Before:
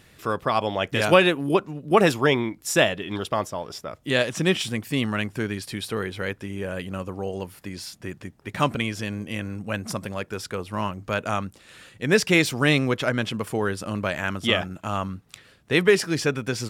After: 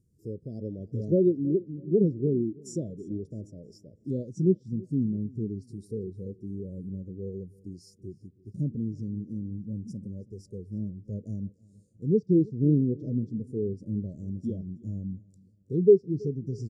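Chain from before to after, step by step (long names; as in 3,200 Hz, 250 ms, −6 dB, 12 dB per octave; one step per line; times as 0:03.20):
harmonic and percussive parts rebalanced harmonic +6 dB
inverse Chebyshev band-stop filter 1,000–2,500 Hz, stop band 60 dB
treble cut that deepens with the level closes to 2,600 Hz, closed at −15.5 dBFS
in parallel at +1 dB: downward compressor, threshold −33 dBFS, peak gain reduction 21.5 dB
on the sum: repeating echo 325 ms, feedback 51%, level −16 dB
every bin expanded away from the loudest bin 1.5 to 1
level −4 dB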